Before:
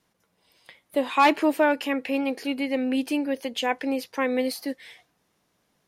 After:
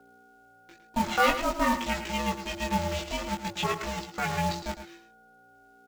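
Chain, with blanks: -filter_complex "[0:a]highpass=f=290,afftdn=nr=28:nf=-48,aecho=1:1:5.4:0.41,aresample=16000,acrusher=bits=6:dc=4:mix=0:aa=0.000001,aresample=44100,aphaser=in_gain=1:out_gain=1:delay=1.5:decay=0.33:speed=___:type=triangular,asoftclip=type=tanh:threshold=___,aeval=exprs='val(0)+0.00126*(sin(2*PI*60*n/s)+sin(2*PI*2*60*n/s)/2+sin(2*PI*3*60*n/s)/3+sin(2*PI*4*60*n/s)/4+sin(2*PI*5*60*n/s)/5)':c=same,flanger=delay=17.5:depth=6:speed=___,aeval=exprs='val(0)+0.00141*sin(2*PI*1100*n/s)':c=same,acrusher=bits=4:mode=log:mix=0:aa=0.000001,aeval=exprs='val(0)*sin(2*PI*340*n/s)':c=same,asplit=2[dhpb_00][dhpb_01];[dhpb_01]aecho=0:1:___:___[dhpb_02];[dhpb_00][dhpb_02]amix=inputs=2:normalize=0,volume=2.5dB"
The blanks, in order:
1.1, -11.5dB, 0.49, 109, 0.299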